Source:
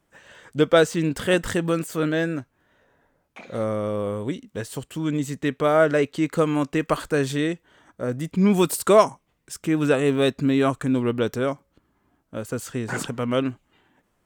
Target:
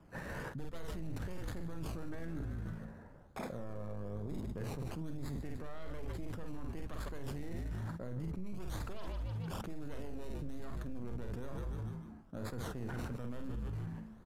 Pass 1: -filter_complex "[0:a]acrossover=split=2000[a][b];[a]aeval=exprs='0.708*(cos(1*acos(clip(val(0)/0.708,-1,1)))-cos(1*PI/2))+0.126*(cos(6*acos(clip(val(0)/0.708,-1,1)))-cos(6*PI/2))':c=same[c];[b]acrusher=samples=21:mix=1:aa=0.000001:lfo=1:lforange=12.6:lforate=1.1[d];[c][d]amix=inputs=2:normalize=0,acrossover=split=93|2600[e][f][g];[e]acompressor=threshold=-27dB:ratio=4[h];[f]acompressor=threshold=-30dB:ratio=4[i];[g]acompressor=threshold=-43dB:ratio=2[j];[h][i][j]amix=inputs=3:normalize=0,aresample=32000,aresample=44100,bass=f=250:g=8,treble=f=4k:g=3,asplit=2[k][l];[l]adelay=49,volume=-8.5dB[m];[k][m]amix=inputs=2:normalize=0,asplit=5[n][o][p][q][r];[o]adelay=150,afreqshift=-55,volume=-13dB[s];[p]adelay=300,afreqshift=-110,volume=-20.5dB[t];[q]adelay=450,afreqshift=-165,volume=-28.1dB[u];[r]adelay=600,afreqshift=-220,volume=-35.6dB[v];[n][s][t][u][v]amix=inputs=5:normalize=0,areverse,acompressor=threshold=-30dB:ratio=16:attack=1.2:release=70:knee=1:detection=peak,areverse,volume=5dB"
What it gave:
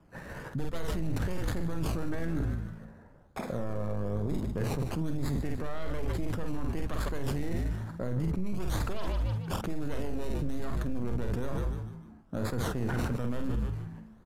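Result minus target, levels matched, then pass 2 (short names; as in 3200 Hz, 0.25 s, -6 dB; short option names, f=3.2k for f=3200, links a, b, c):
compressor: peak gain reduction -10 dB
-filter_complex "[0:a]acrossover=split=2000[a][b];[a]aeval=exprs='0.708*(cos(1*acos(clip(val(0)/0.708,-1,1)))-cos(1*PI/2))+0.126*(cos(6*acos(clip(val(0)/0.708,-1,1)))-cos(6*PI/2))':c=same[c];[b]acrusher=samples=21:mix=1:aa=0.000001:lfo=1:lforange=12.6:lforate=1.1[d];[c][d]amix=inputs=2:normalize=0,acrossover=split=93|2600[e][f][g];[e]acompressor=threshold=-27dB:ratio=4[h];[f]acompressor=threshold=-30dB:ratio=4[i];[g]acompressor=threshold=-43dB:ratio=2[j];[h][i][j]amix=inputs=3:normalize=0,aresample=32000,aresample=44100,bass=f=250:g=8,treble=f=4k:g=3,asplit=2[k][l];[l]adelay=49,volume=-8.5dB[m];[k][m]amix=inputs=2:normalize=0,asplit=5[n][o][p][q][r];[o]adelay=150,afreqshift=-55,volume=-13dB[s];[p]adelay=300,afreqshift=-110,volume=-20.5dB[t];[q]adelay=450,afreqshift=-165,volume=-28.1dB[u];[r]adelay=600,afreqshift=-220,volume=-35.6dB[v];[n][s][t][u][v]amix=inputs=5:normalize=0,areverse,acompressor=threshold=-40.5dB:ratio=16:attack=1.2:release=70:knee=1:detection=peak,areverse,volume=5dB"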